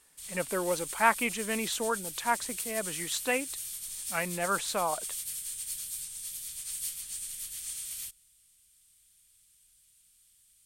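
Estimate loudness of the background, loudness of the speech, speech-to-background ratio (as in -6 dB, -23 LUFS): -36.0 LUFS, -31.5 LUFS, 4.5 dB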